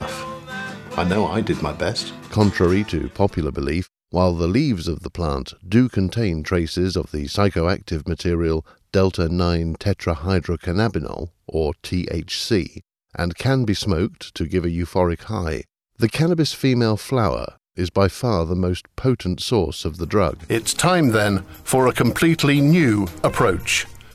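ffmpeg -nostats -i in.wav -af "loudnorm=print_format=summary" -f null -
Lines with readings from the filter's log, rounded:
Input Integrated:    -20.5 LUFS
Input True Peak:      -2.6 dBTP
Input LRA:             5.1 LU
Input Threshold:     -30.7 LUFS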